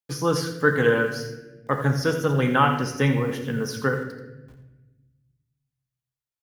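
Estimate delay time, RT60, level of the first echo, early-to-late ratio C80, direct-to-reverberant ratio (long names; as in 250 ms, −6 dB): 84 ms, 1.1 s, −11.5 dB, 8.0 dB, 3.0 dB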